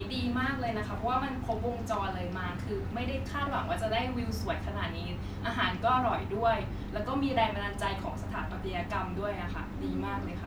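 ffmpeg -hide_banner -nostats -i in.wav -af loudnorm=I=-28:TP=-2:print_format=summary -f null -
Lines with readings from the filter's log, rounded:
Input Integrated:    -33.1 LUFS
Input True Peak:     -15.1 dBTP
Input LRA:             4.2 LU
Input Threshold:     -43.1 LUFS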